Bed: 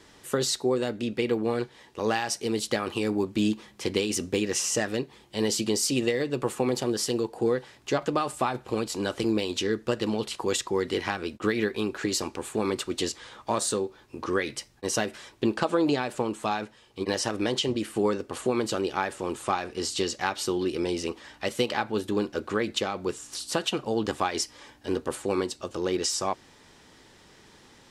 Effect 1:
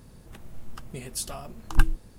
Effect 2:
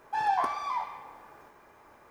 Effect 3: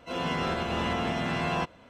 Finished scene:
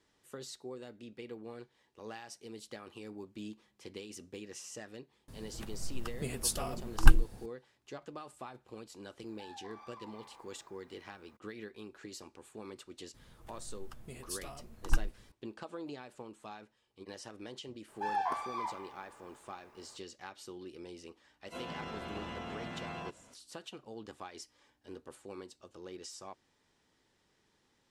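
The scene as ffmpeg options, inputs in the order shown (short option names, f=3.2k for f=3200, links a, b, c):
-filter_complex "[1:a]asplit=2[a][b];[2:a]asplit=2[c][d];[0:a]volume=-19.5dB[e];[c]acompressor=threshold=-39dB:ratio=6:attack=3.2:release=140:knee=1:detection=peak[f];[b]equalizer=f=180:w=1.5:g=-2.5[g];[3:a]alimiter=level_in=2.5dB:limit=-24dB:level=0:latency=1:release=111,volume=-2.5dB[h];[a]atrim=end=2.18,asetpts=PTS-STARTPTS,afade=t=in:d=0.004:c=hsin,afade=t=out:st=2.176:d=0.004:c=hsin,adelay=5280[i];[f]atrim=end=2.1,asetpts=PTS-STARTPTS,volume=-11dB,afade=t=in:d=0.004:c=hsin,afade=t=out:st=2.096:d=0.004:c=hsin,adelay=9270[j];[g]atrim=end=2.18,asetpts=PTS-STARTPTS,volume=-9dB,afade=t=in:d=0.004:c=hsin,afade=t=out:st=2.176:d=0.004:c=hsin,adelay=13140[k];[d]atrim=end=2.1,asetpts=PTS-STARTPTS,volume=-6.5dB,afade=t=in:d=0.004:c=hsin,afade=t=out:st=2.096:d=0.004:c=hsin,adelay=17880[l];[h]atrim=end=1.89,asetpts=PTS-STARTPTS,volume=-7.5dB,afade=t=in:d=0.004:c=hsin,afade=t=out:st=1.886:d=0.004:c=hsin,adelay=21450[m];[e][i][j][k][l][m]amix=inputs=6:normalize=0"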